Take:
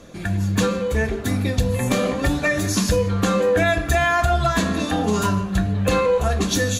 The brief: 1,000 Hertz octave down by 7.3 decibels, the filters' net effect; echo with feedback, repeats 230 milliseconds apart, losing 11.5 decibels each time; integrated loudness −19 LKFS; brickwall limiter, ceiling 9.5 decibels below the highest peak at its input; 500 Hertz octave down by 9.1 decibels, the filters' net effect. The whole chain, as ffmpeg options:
ffmpeg -i in.wav -af "equalizer=frequency=500:width_type=o:gain=-8.5,equalizer=frequency=1000:width_type=o:gain=-7.5,alimiter=limit=-18dB:level=0:latency=1,aecho=1:1:230|460|690:0.266|0.0718|0.0194,volume=7.5dB" out.wav

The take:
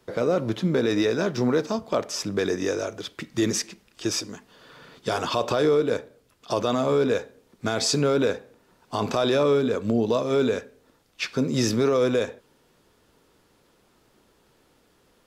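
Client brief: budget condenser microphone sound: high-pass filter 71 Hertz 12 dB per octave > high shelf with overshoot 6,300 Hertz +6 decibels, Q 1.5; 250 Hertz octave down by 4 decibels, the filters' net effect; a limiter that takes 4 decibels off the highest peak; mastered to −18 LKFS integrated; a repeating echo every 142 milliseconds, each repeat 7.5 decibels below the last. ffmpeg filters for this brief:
ffmpeg -i in.wav -af "equalizer=frequency=250:width_type=o:gain=-5,alimiter=limit=-17dB:level=0:latency=1,highpass=71,highshelf=frequency=6300:width_type=q:width=1.5:gain=6,aecho=1:1:142|284|426|568|710:0.422|0.177|0.0744|0.0312|0.0131,volume=9dB" out.wav

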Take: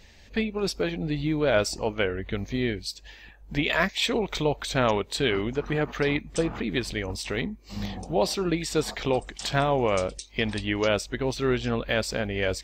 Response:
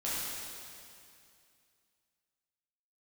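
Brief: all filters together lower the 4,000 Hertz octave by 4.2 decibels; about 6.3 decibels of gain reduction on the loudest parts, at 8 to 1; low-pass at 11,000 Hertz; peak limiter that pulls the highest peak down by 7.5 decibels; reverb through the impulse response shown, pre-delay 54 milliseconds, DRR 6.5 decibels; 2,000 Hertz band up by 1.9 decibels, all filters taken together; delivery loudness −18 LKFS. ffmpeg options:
-filter_complex "[0:a]lowpass=11000,equalizer=frequency=2000:width_type=o:gain=4,equalizer=frequency=4000:width_type=o:gain=-7,acompressor=threshold=-24dB:ratio=8,alimiter=limit=-20.5dB:level=0:latency=1,asplit=2[link_01][link_02];[1:a]atrim=start_sample=2205,adelay=54[link_03];[link_02][link_03]afir=irnorm=-1:irlink=0,volume=-12.5dB[link_04];[link_01][link_04]amix=inputs=2:normalize=0,volume=13.5dB"

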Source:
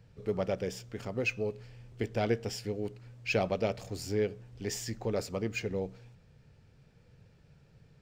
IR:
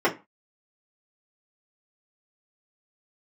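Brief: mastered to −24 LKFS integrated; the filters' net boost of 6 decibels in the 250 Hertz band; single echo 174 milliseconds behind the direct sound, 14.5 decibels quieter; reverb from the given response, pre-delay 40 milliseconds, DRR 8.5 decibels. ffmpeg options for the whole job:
-filter_complex "[0:a]equalizer=frequency=250:width_type=o:gain=8,aecho=1:1:174:0.188,asplit=2[link_01][link_02];[1:a]atrim=start_sample=2205,adelay=40[link_03];[link_02][link_03]afir=irnorm=-1:irlink=0,volume=-25dB[link_04];[link_01][link_04]amix=inputs=2:normalize=0,volume=6.5dB"

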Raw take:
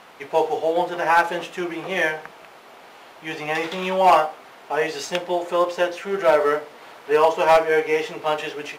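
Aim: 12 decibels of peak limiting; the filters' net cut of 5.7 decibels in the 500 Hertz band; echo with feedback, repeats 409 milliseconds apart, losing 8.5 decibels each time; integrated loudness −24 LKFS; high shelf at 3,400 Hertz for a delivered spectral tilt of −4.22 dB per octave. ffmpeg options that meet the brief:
ffmpeg -i in.wav -af "equalizer=frequency=500:width_type=o:gain=-7,highshelf=frequency=3400:gain=-6.5,alimiter=limit=-20.5dB:level=0:latency=1,aecho=1:1:409|818|1227|1636:0.376|0.143|0.0543|0.0206,volume=6.5dB" out.wav

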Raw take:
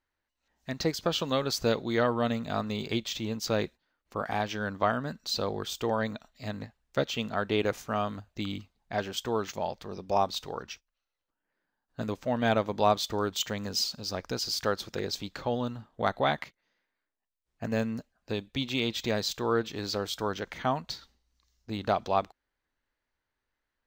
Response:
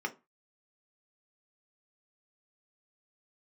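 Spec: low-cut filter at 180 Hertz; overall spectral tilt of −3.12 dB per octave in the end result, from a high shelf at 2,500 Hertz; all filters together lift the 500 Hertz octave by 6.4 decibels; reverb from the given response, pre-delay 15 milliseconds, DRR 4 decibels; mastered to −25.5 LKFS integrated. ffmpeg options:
-filter_complex "[0:a]highpass=180,equalizer=frequency=500:width_type=o:gain=8,highshelf=frequency=2500:gain=-4,asplit=2[link_01][link_02];[1:a]atrim=start_sample=2205,adelay=15[link_03];[link_02][link_03]afir=irnorm=-1:irlink=0,volume=-8.5dB[link_04];[link_01][link_04]amix=inputs=2:normalize=0,volume=1dB"

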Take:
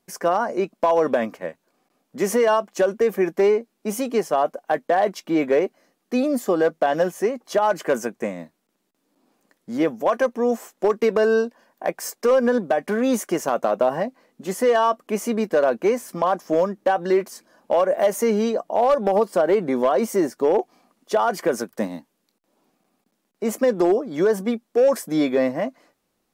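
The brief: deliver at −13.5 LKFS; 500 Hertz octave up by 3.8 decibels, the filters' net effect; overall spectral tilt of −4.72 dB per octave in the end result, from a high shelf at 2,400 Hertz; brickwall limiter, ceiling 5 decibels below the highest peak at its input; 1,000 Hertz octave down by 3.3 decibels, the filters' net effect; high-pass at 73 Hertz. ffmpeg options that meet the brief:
ffmpeg -i in.wav -af "highpass=73,equalizer=frequency=500:width_type=o:gain=6.5,equalizer=frequency=1000:width_type=o:gain=-9,highshelf=frequency=2400:gain=3.5,volume=7.5dB,alimiter=limit=-3.5dB:level=0:latency=1" out.wav

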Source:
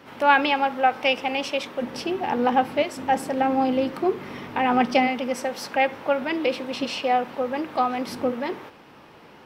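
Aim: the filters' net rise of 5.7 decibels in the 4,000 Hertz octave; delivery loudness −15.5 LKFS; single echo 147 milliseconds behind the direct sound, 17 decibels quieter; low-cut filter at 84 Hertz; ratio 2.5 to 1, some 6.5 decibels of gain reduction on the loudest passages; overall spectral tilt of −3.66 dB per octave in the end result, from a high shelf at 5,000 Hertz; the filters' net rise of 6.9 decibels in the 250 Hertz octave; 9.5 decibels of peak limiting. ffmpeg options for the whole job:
ffmpeg -i in.wav -af "highpass=84,equalizer=frequency=250:width_type=o:gain=7.5,equalizer=frequency=4000:width_type=o:gain=6.5,highshelf=frequency=5000:gain=4.5,acompressor=threshold=-21dB:ratio=2.5,alimiter=limit=-18dB:level=0:latency=1,aecho=1:1:147:0.141,volume=11.5dB" out.wav

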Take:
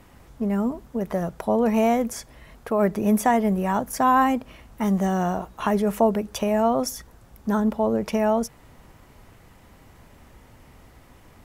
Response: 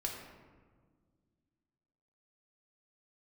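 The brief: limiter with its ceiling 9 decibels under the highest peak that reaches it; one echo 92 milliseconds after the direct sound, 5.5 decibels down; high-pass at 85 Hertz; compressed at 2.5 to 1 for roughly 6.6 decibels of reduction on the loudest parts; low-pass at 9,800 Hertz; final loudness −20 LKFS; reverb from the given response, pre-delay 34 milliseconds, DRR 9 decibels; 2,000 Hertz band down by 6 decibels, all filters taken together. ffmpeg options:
-filter_complex "[0:a]highpass=85,lowpass=9800,equalizer=frequency=2000:width_type=o:gain=-8,acompressor=threshold=-25dB:ratio=2.5,alimiter=limit=-20dB:level=0:latency=1,aecho=1:1:92:0.531,asplit=2[link_01][link_02];[1:a]atrim=start_sample=2205,adelay=34[link_03];[link_02][link_03]afir=irnorm=-1:irlink=0,volume=-10.5dB[link_04];[link_01][link_04]amix=inputs=2:normalize=0,volume=9.5dB"

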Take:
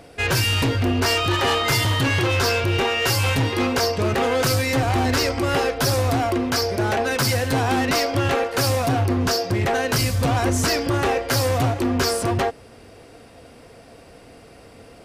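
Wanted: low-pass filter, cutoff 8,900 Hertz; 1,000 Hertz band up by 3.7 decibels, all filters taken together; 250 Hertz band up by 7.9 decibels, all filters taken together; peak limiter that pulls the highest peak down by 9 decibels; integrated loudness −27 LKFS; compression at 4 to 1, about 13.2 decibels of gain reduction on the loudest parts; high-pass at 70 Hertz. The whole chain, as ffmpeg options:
ffmpeg -i in.wav -af "highpass=70,lowpass=8900,equalizer=frequency=250:width_type=o:gain=9,equalizer=frequency=1000:width_type=o:gain=4.5,acompressor=threshold=-28dB:ratio=4,volume=7dB,alimiter=limit=-19dB:level=0:latency=1" out.wav

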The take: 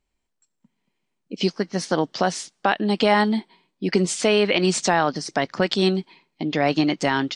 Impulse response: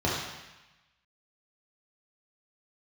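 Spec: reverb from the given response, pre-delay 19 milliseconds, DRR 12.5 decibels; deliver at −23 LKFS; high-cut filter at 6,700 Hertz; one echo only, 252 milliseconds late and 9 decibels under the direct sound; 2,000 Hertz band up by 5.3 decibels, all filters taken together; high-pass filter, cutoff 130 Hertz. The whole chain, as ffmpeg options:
-filter_complex "[0:a]highpass=130,lowpass=6700,equalizer=frequency=2000:width_type=o:gain=6.5,aecho=1:1:252:0.355,asplit=2[link_01][link_02];[1:a]atrim=start_sample=2205,adelay=19[link_03];[link_02][link_03]afir=irnorm=-1:irlink=0,volume=-25dB[link_04];[link_01][link_04]amix=inputs=2:normalize=0,volume=-3dB"

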